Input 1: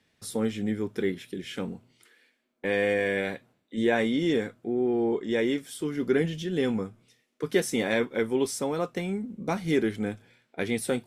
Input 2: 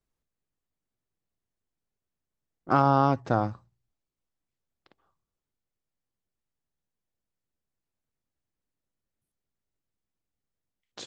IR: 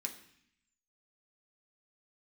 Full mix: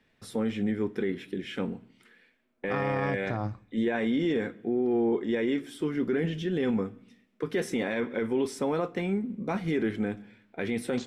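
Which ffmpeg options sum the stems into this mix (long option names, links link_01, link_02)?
-filter_complex "[0:a]bass=frequency=250:gain=1,treble=frequency=4000:gain=-14,volume=1.5dB,asplit=2[link_01][link_02];[link_02]volume=-11dB[link_03];[1:a]lowshelf=frequency=130:gain=11,volume=-4dB,asplit=2[link_04][link_05];[link_05]volume=-18dB[link_06];[2:a]atrim=start_sample=2205[link_07];[link_03][link_06]amix=inputs=2:normalize=0[link_08];[link_08][link_07]afir=irnorm=-1:irlink=0[link_09];[link_01][link_04][link_09]amix=inputs=3:normalize=0,alimiter=limit=-19.5dB:level=0:latency=1:release=28"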